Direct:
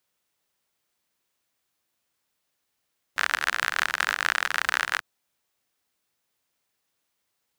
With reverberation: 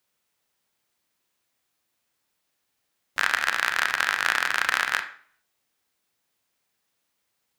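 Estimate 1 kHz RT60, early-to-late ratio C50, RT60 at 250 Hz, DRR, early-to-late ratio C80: 0.50 s, 10.5 dB, 0.60 s, 7.0 dB, 15.0 dB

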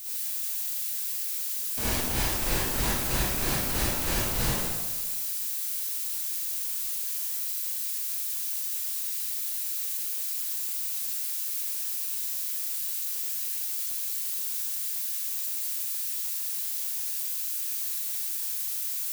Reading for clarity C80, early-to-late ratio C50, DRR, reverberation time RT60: -1.5 dB, -6.0 dB, -9.5 dB, 1.4 s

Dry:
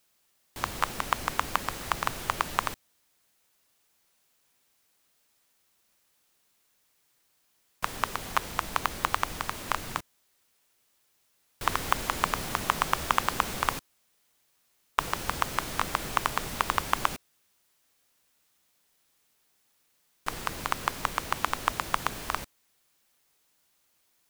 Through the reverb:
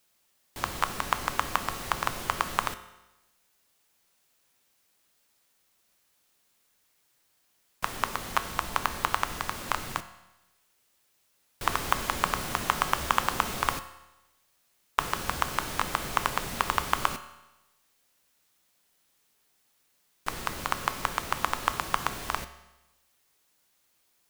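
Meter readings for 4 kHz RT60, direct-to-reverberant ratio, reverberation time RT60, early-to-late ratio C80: 1.0 s, 10.0 dB, 1.0 s, 15.0 dB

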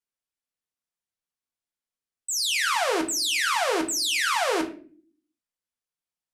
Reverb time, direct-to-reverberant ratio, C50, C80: 0.45 s, 2.5 dB, 12.5 dB, 17.0 dB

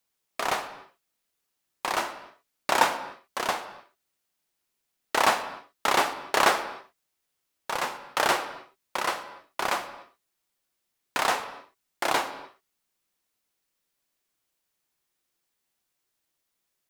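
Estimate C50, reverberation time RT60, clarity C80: 12.0 dB, no single decay rate, 13.5 dB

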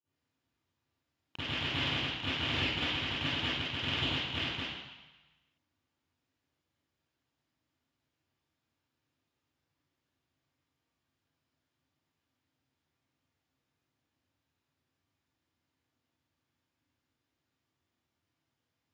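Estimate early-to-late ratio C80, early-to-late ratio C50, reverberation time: -3.0 dB, -9.0 dB, 1.1 s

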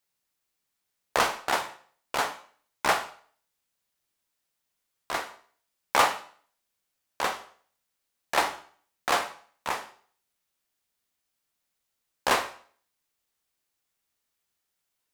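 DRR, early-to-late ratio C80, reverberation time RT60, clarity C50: 7.5 dB, 16.5 dB, 0.50 s, 12.5 dB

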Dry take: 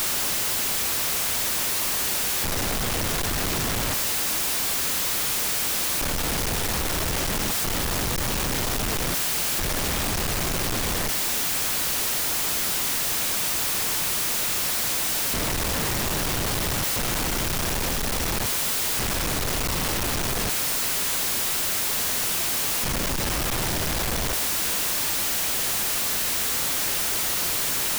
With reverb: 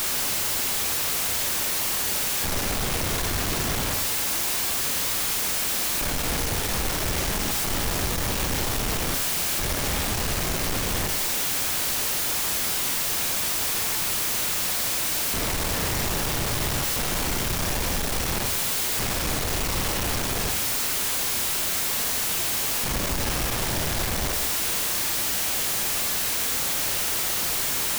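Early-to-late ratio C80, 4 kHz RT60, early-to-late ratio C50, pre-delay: 13.0 dB, 0.45 s, 9.0 dB, 28 ms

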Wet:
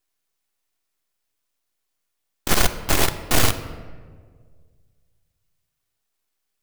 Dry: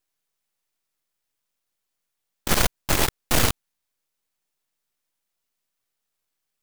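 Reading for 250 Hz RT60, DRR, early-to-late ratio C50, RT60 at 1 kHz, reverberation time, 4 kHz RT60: 1.9 s, 9.0 dB, 12.0 dB, 1.5 s, 1.7 s, 0.90 s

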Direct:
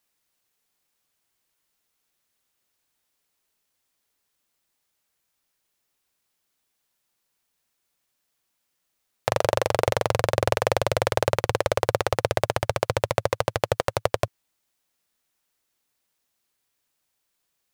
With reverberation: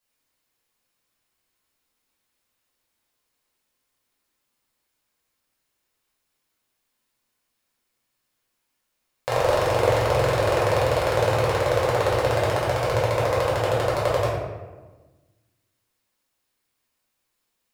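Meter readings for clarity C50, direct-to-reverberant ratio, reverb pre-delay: 0.0 dB, -8.5 dB, 3 ms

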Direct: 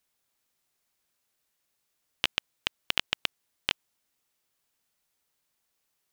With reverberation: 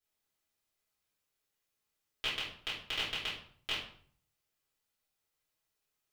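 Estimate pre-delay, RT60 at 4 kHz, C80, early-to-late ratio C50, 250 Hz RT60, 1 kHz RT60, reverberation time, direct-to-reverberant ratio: 3 ms, 0.40 s, 8.0 dB, 3.5 dB, 0.65 s, 0.55 s, 0.55 s, -10.0 dB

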